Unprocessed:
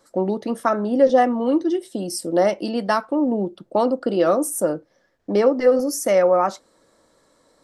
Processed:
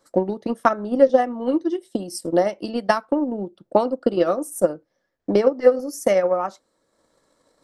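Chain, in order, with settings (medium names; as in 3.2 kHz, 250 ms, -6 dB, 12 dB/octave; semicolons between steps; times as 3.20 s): transient shaper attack +10 dB, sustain -5 dB; trim -5 dB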